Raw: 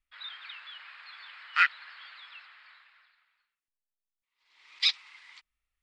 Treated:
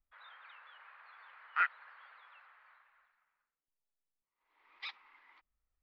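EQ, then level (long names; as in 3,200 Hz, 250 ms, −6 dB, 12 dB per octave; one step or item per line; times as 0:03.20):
low-pass filter 1,000 Hz 12 dB per octave
+1.5 dB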